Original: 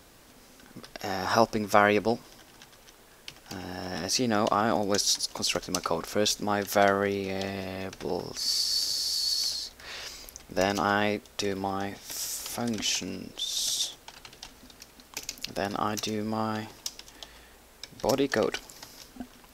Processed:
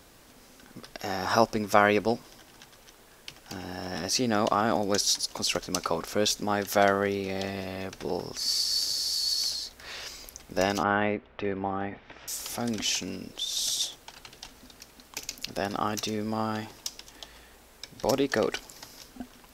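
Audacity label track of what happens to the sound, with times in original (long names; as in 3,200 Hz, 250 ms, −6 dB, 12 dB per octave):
10.830000	12.280000	low-pass filter 2,600 Hz 24 dB per octave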